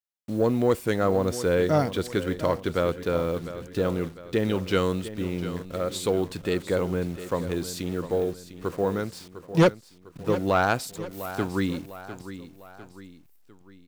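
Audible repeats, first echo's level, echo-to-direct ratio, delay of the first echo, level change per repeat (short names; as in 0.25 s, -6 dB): 3, -13.0 dB, -12.0 dB, 0.702 s, -6.5 dB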